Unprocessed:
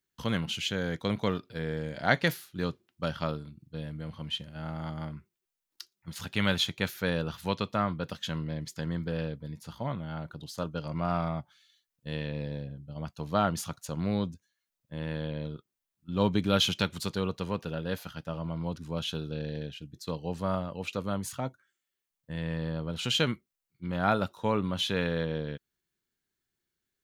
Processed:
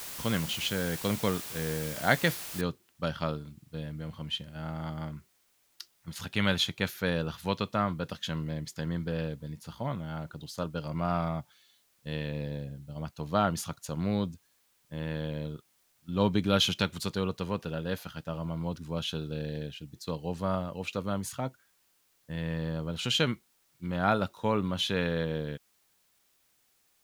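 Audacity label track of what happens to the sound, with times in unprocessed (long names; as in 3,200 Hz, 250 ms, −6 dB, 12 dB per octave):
2.610000	2.610000	noise floor change −41 dB −70 dB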